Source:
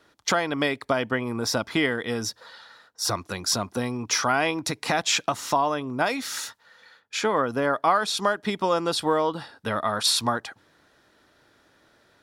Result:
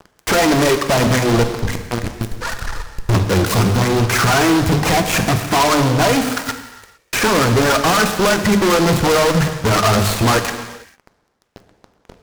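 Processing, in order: 1.43–3.08 half-wave gain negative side -12 dB; de-esser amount 80%; RIAA curve playback; reverb removal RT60 0.66 s; bell 3500 Hz -8.5 dB 0.3 oct; notches 50/100/150/200/250 Hz; in parallel at 0 dB: compressor, threshold -30 dBFS, peak gain reduction 18 dB; on the sum: phaser 1.9 Hz, delay 3.1 ms, feedback 57%; fuzz box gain 34 dB, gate -41 dBFS; on a send at -6 dB: reverb, pre-delay 3 ms; on the sum: noise-modulated delay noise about 3400 Hz, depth 0.052 ms

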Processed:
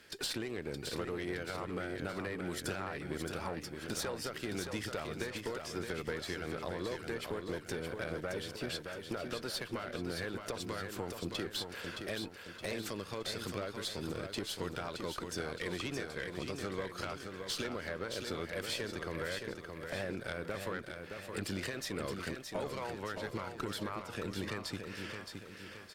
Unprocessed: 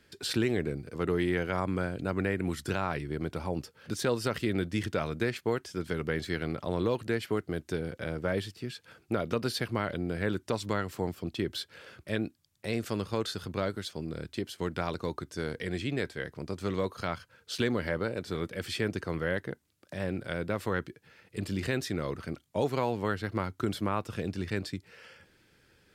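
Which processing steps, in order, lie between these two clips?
low shelf 290 Hz -11 dB; compressor 12:1, threshold -40 dBFS, peak gain reduction 14.5 dB; harmoniser +3 st -17 dB; tube stage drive 36 dB, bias 0.5; feedback echo 0.619 s, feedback 46%, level -6 dB; gain +8 dB

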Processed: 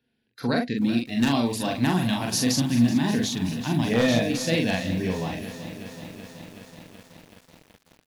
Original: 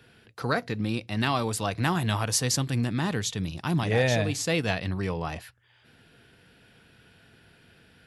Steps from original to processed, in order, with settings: spectral noise reduction 21 dB; thirty-one-band EQ 100 Hz -8 dB, 250 Hz +12 dB, 1250 Hz -12 dB, 4000 Hz +3 dB, 8000 Hz -9 dB; wavefolder -13.5 dBFS; early reflections 33 ms -17 dB, 43 ms -3 dB; lo-fi delay 0.377 s, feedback 80%, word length 7-bit, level -13.5 dB

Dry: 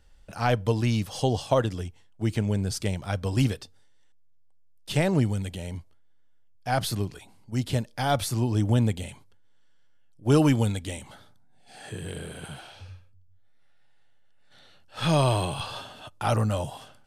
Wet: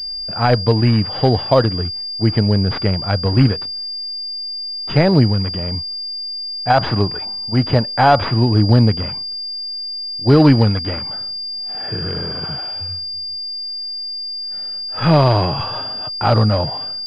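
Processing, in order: 6.7–8.26 bell 1000 Hz +8 dB 2.1 oct; maximiser +11.5 dB; pulse-width modulation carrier 4800 Hz; gain -1 dB

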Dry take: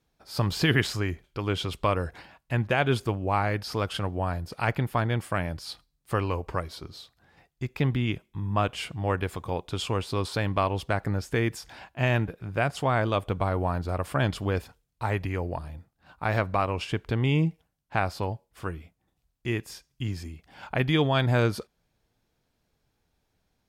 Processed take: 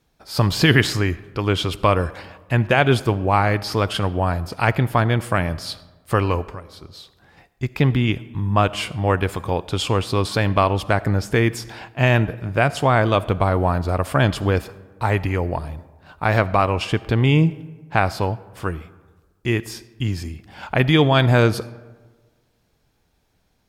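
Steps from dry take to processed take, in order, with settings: 6.42–7.63 compressor 3:1, threshold -46 dBFS, peak gain reduction 17 dB; on a send: reverb RT60 1.4 s, pre-delay 25 ms, DRR 18 dB; on the sum: gain +8 dB

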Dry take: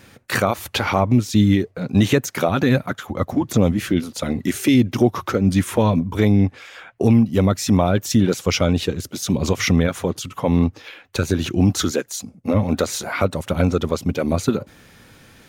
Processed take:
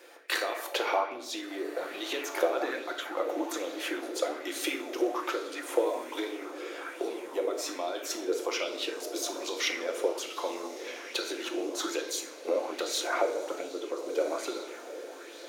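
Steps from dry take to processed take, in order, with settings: 13.07–14.02 tilt shelf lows +7.5 dB, about 800 Hz; compressor, threshold -22 dBFS, peak gain reduction 15 dB; elliptic high-pass 320 Hz, stop band 40 dB; diffused feedback echo 1.393 s, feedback 55%, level -12.5 dB; shoebox room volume 400 m³, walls mixed, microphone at 0.83 m; LFO bell 1.2 Hz 440–4100 Hz +9 dB; gain -6 dB

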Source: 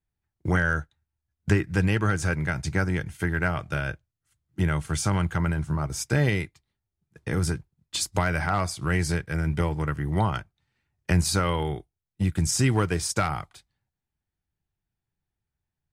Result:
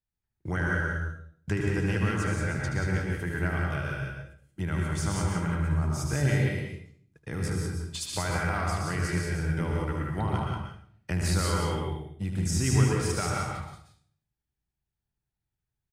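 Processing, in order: loudspeakers at several distances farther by 26 m -7 dB, 62 m -5 dB; reverb RT60 0.55 s, pre-delay 0.112 s, DRR 1 dB; gain -8 dB

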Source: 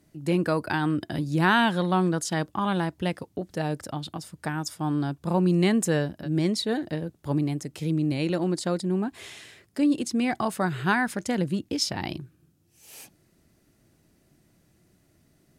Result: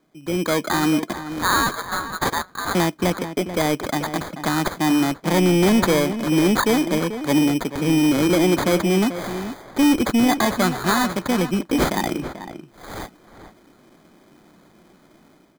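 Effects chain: HPF 180 Hz 24 dB/oct, from 1.13 s 1500 Hz, from 2.75 s 190 Hz; AGC gain up to 13.5 dB; sample-and-hold 16×; soft clip -12 dBFS, distortion -12 dB; outdoor echo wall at 75 m, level -11 dB

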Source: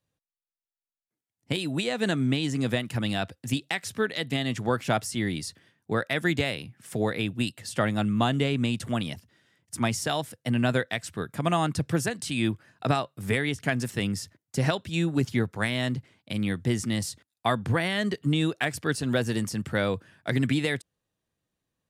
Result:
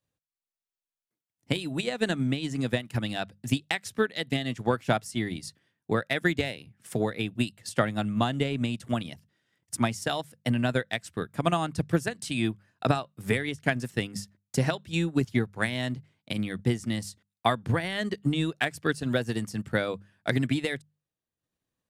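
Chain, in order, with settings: notches 50/100/150/200 Hz; transient shaper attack +6 dB, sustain -7 dB; gain -3 dB

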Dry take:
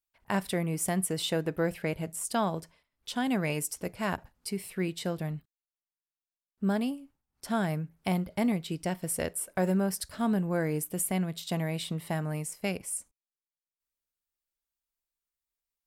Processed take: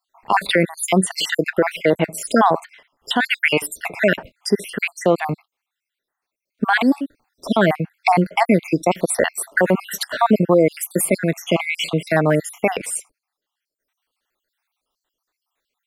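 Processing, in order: random spectral dropouts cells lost 61%; 6.68–7.47 transient shaper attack -8 dB, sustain +6 dB; three-band isolator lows -16 dB, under 250 Hz, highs -13 dB, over 3900 Hz; maximiser +27.5 dB; gain -4 dB

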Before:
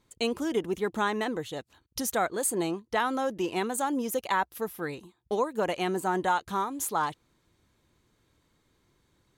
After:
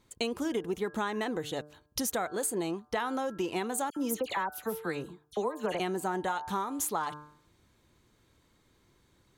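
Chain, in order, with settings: de-hum 149.4 Hz, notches 11; compressor, threshold -31 dBFS, peak gain reduction 9.5 dB; 3.9–5.8 dispersion lows, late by 64 ms, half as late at 2200 Hz; gain +2.5 dB

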